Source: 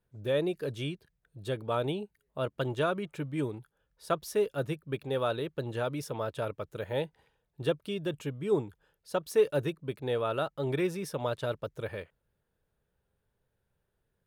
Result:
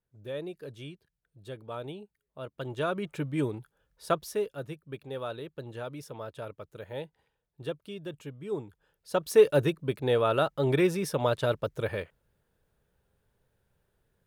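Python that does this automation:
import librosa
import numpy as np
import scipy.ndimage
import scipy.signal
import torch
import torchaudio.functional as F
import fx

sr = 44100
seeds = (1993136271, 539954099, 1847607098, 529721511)

y = fx.gain(x, sr, db=fx.line((2.48, -8.0), (3.08, 3.0), (4.1, 3.0), (4.6, -6.0), (8.57, -6.0), (9.32, 5.5)))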